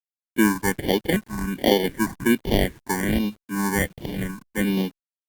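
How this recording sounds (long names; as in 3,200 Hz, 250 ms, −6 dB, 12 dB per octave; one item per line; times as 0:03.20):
aliases and images of a low sample rate 1,300 Hz, jitter 0%
phaser sweep stages 4, 1.3 Hz, lowest notch 510–1,400 Hz
a quantiser's noise floor 10 bits, dither none
Opus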